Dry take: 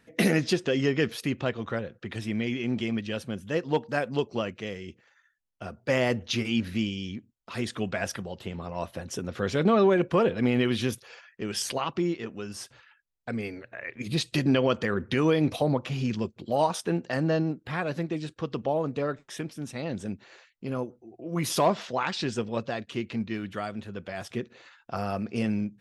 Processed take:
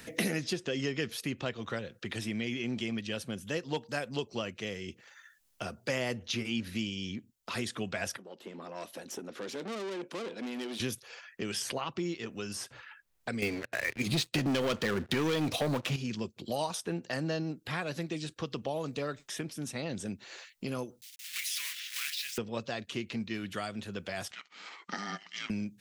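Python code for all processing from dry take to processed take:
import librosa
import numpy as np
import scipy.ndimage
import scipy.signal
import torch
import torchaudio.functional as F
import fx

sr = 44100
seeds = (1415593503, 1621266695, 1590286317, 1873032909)

y = fx.chain(x, sr, fx.tube_stage(drive_db=28.0, bias=0.55),
    fx.ladder_highpass(hz=220.0, resonance_pct=35), at=(8.17, 10.8))
y = fx.chain(y, sr, fx.high_shelf(hz=9700.0, db=-9.5),
    fx.leveller(passes=3), at=(13.42, 15.96))
y = fx.chain(y, sr, fx.block_float(bits=3),
    fx.cheby2_highpass(hz=830.0, order=4, stop_db=50), at=(21.01, 22.38))
y = fx.chain(y, sr, fx.brickwall_bandpass(low_hz=680.0, high_hz=7900.0),
    fx.ring_mod(carrier_hz=510.0), at=(24.31, 25.5))
y = fx.high_shelf(y, sr, hz=3500.0, db=9.5)
y = fx.band_squash(y, sr, depth_pct=70)
y = F.gain(torch.from_numpy(y), -7.5).numpy()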